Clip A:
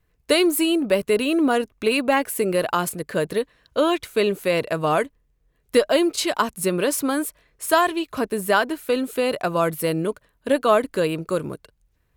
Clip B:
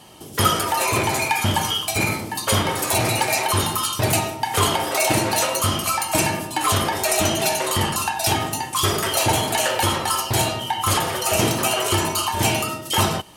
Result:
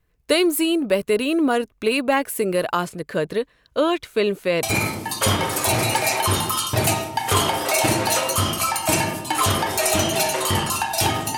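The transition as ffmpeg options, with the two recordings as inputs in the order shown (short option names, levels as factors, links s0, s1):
-filter_complex "[0:a]asettb=1/sr,asplit=3[s0][s1][s2];[s0]atrim=end=2.844[s3];[s1]atrim=start=2.84:end=4.63,asetpts=PTS-STARTPTS,afade=t=in:d=0.004:c=qsin,afade=t=out:st=1.786:d=0.004:c=qsin,acrossover=split=6800[s4][s5];[s5]acompressor=threshold=0.00398:ratio=4:attack=1:release=60[s6];[s4][s6]amix=inputs=2:normalize=0[s7];[s2]atrim=start=4.626[s8];[s3][s7]acrossfade=d=0.004:c1=hsin:c2=qsin[s9];[s9][s8]acrossfade=d=0.004:c1=qsin:c2=hsin,apad=whole_dur=11.37,atrim=end=11.37,atrim=end=4.632[s10];[1:a]atrim=start=1.888:end=8.63[s11];[s10][s11]acrossfade=d=0.004:c1=hsin:c2=hsin"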